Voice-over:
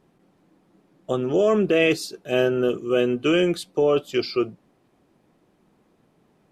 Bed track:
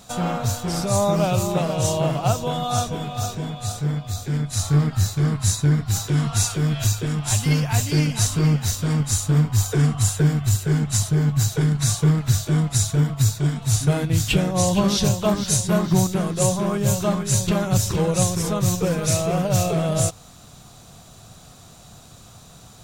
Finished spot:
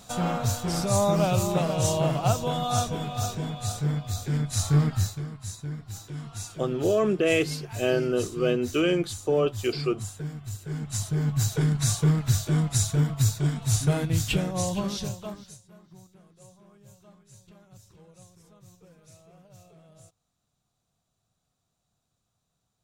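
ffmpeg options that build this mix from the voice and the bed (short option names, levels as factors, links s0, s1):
-filter_complex "[0:a]adelay=5500,volume=0.631[s0];[1:a]volume=2.99,afade=t=out:st=4.91:d=0.35:silence=0.211349,afade=t=in:st=10.58:d=0.96:silence=0.237137,afade=t=out:st=14:d=1.59:silence=0.0354813[s1];[s0][s1]amix=inputs=2:normalize=0"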